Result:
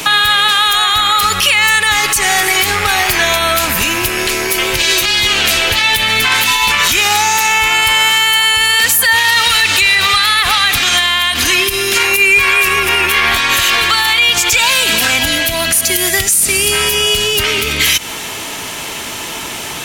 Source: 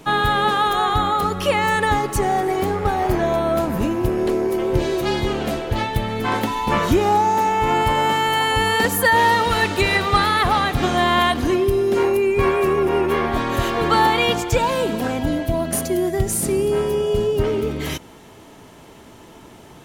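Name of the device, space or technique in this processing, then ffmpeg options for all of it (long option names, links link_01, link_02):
mastering chain: -filter_complex "[0:a]equalizer=frequency=2500:width_type=o:width=0.31:gain=3.5,acrossover=split=100|1400[link_01][link_02][link_03];[link_01]acompressor=threshold=-31dB:ratio=4[link_04];[link_02]acompressor=threshold=-33dB:ratio=4[link_05];[link_03]acompressor=threshold=-23dB:ratio=4[link_06];[link_04][link_05][link_06]amix=inputs=3:normalize=0,acompressor=threshold=-30dB:ratio=2.5,tiltshelf=frequency=1100:gain=-9.5,alimiter=level_in=21dB:limit=-1dB:release=50:level=0:latency=1,volume=-1dB"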